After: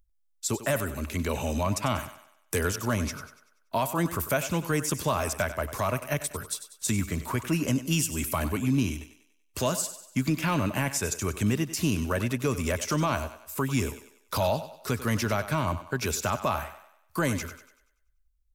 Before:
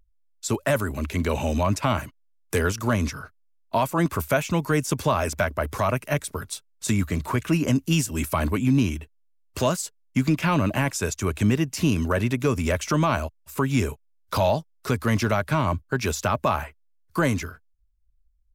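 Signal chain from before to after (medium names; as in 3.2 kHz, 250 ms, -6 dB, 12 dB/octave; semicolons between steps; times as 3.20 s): treble shelf 5.4 kHz +8.5 dB; on a send: thinning echo 96 ms, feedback 45%, high-pass 260 Hz, level -12 dB; on the sum: trim -5 dB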